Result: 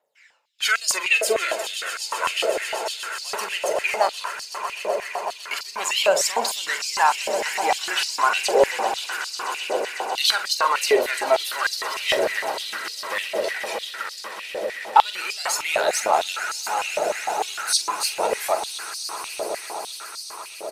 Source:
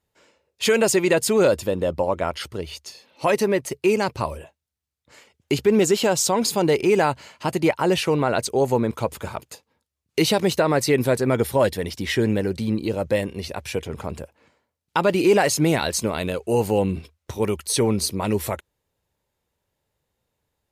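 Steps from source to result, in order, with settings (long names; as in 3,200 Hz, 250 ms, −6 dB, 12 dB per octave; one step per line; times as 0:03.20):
phase shifter 0.31 Hz, delay 3.2 ms, feedback 60%
pitch vibrato 4 Hz 32 cents
double-tracking delay 44 ms −10 dB
echo that builds up and dies away 126 ms, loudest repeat 8, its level −15 dB
high-pass on a step sequencer 6.6 Hz 590–4,700 Hz
level −3.5 dB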